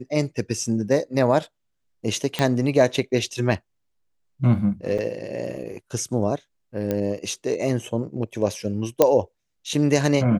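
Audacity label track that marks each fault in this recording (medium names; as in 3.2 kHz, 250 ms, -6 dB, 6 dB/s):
2.390000	2.390000	pop -8 dBFS
4.980000	4.990000	dropout 5.7 ms
6.910000	6.910000	pop -12 dBFS
9.020000	9.020000	pop -2 dBFS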